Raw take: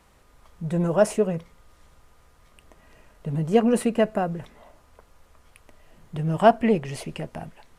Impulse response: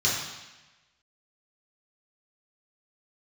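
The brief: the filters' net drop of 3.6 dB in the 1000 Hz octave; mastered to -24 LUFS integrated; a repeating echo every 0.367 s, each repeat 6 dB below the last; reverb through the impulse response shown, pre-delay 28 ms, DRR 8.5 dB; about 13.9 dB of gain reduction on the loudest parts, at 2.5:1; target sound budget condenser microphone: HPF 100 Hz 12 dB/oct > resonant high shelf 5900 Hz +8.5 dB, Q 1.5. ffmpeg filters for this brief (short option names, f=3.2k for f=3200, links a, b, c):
-filter_complex "[0:a]equalizer=f=1k:t=o:g=-6,acompressor=threshold=-35dB:ratio=2.5,aecho=1:1:367|734|1101|1468|1835|2202:0.501|0.251|0.125|0.0626|0.0313|0.0157,asplit=2[a][b];[1:a]atrim=start_sample=2205,adelay=28[c];[b][c]afir=irnorm=-1:irlink=0,volume=-21dB[d];[a][d]amix=inputs=2:normalize=0,highpass=100,highshelf=f=5.9k:t=q:w=1.5:g=8.5,volume=10.5dB"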